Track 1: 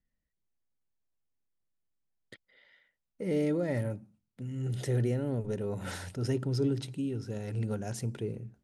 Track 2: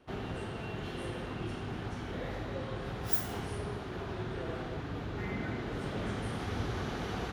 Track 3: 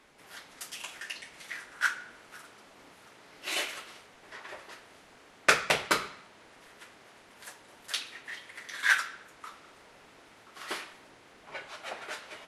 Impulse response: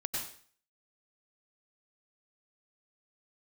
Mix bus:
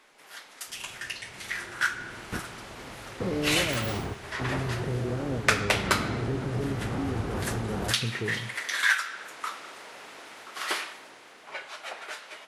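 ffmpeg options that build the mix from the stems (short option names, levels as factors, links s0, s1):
-filter_complex "[0:a]volume=0.596,asplit=2[s0][s1];[1:a]adelay=600,volume=0.708,asplit=2[s2][s3];[s3]volume=0.119[s4];[2:a]highpass=f=500:p=1,acompressor=threshold=0.0141:ratio=2.5,volume=1.41[s5];[s1]apad=whole_len=349436[s6];[s2][s6]sidechaingate=range=0.0224:threshold=0.00126:ratio=16:detection=peak[s7];[s0][s7]amix=inputs=2:normalize=0,lowpass=1700,alimiter=level_in=2.24:limit=0.0631:level=0:latency=1:release=284,volume=0.447,volume=1[s8];[3:a]atrim=start_sample=2205[s9];[s4][s9]afir=irnorm=-1:irlink=0[s10];[s5][s8][s10]amix=inputs=3:normalize=0,dynaudnorm=f=100:g=31:m=2.82"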